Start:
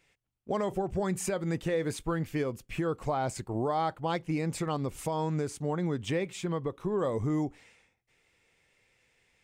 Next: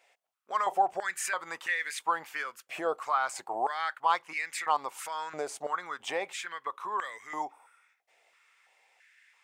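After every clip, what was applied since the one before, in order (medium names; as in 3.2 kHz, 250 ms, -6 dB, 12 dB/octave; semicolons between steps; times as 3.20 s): spectral replace 7.52–7.86 s, 1.5–7.8 kHz after; step-sequenced high-pass 3 Hz 670–1900 Hz; trim +1.5 dB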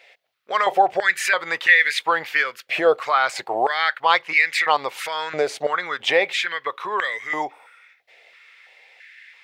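graphic EQ 125/500/1000/2000/4000/8000 Hz +8/+8/-4/+9/+10/-7 dB; trim +7 dB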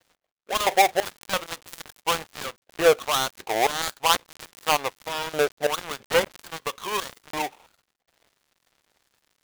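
dead-time distortion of 0.27 ms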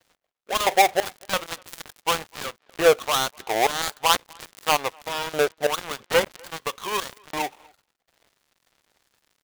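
speakerphone echo 250 ms, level -28 dB; trim +1 dB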